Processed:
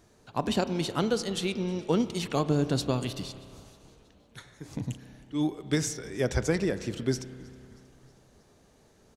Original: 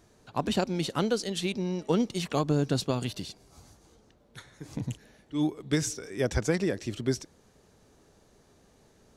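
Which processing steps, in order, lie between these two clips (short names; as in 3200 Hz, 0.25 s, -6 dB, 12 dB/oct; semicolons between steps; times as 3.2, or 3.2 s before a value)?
on a send: frequency-shifting echo 0.317 s, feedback 59%, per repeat -86 Hz, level -24 dB; on the sum: spring tank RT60 2.4 s, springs 31 ms, chirp 20 ms, DRR 12.5 dB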